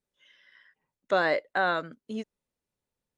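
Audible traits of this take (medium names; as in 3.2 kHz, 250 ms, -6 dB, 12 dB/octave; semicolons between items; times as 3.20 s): noise floor -90 dBFS; spectral tilt -2.0 dB/octave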